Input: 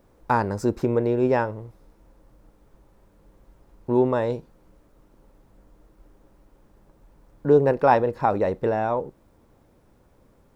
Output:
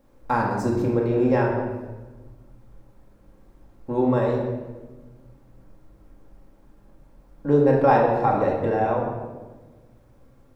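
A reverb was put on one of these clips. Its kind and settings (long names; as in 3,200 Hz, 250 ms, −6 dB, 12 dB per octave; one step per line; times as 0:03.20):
rectangular room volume 930 cubic metres, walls mixed, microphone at 2.2 metres
level −4 dB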